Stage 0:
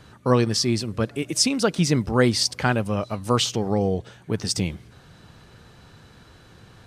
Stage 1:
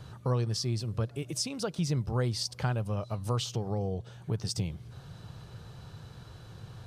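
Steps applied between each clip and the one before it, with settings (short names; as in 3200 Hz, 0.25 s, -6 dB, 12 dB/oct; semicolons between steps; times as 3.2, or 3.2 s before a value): compressor 2:1, threshold -36 dBFS, peak gain reduction 12.5 dB; graphic EQ 125/250/2000/8000 Hz +8/-7/-7/-3 dB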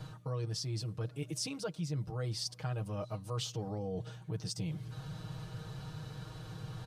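comb 6.4 ms, depth 92%; reverse; compressor 4:1, threshold -36 dBFS, peak gain reduction 13.5 dB; reverse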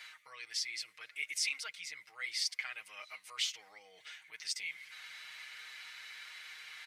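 resonant high-pass 2100 Hz, resonance Q 9.8; gain +2.5 dB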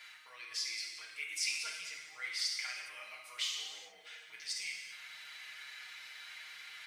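companded quantiser 8-bit; reverb, pre-delay 3 ms, DRR -1 dB; gain -3.5 dB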